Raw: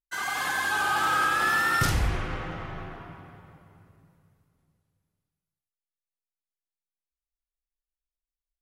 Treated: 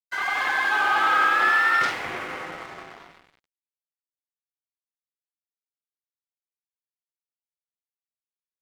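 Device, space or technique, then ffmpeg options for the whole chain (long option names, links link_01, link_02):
pocket radio on a weak battery: -filter_complex "[0:a]asettb=1/sr,asplit=3[link_01][link_02][link_03];[link_01]atrim=end=1.524[link_04];[link_02]atrim=start=1.52:end=2.05,asetpts=PTS-STARTPTS,afade=type=in:duration=0.004:curve=qsin,afade=type=out:start_time=0.526:duration=0.004:curve=qsin,lowshelf=frequency=320:gain=-9[link_05];[link_03]atrim=start=2.046[link_06];[link_04][link_05]acrossfade=duration=0.004:curve1=hsin:curve2=qsin[link_07];[link_07][link_06]acrossfade=duration=0.004:curve1=qsin:curve2=hsin,highpass=350,lowpass=3400,aeval=exprs='sgn(val(0))*max(abs(val(0))-0.00447,0)':channel_layout=same,equalizer=frequency=2100:width_type=o:width=0.3:gain=5,volume=5dB"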